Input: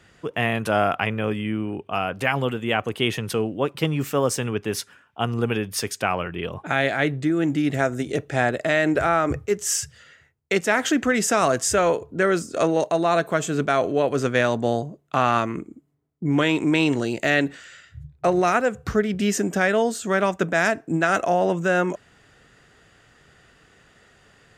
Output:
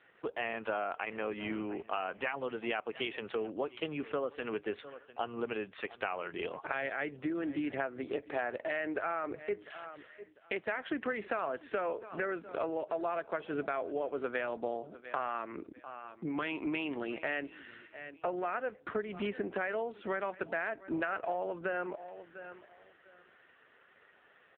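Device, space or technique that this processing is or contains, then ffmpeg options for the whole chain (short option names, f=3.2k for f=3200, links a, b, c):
voicemail: -filter_complex "[0:a]asettb=1/sr,asplit=3[a][b][c];[a]atrim=end=3.934[d];[b]atrim=start=3.93:end=4.42,asetpts=PTS-STARTPTS,afade=t=in:d=0.004:c=qsin,afade=t=out:st=0.486:d=0.004:c=qsin,bandreject=f=920:w=5.4[e];[c]atrim=start=4.416[f];[d][e]acrossfade=d=0.004:c1=hsin:c2=qsin[g];[g][f]acrossfade=d=0.004:c1=qsin:c2=hsin,asettb=1/sr,asplit=3[h][i][j];[h]atrim=end=16.294[k];[i]atrim=start=16.29:end=17.23,asetpts=PTS-STARTPTS,afade=t=in:d=0.004:c=qsin,afade=t=out:st=0.936:d=0.004:c=qsin,equalizer=f=470:t=o:w=0.92:g=-5.5[l];[j]atrim=start=17.226[m];[k][l]acrossfade=d=0.004:c1=hsin:c2=qsin[n];[n][m]acrossfade=d=0.004:c1=qsin:c2=hsin,highpass=360,lowpass=3k,aecho=1:1:698|1396:0.075|0.0157,acompressor=threshold=-29dB:ratio=6,volume=-2dB" -ar 8000 -c:a libopencore_amrnb -b:a 5900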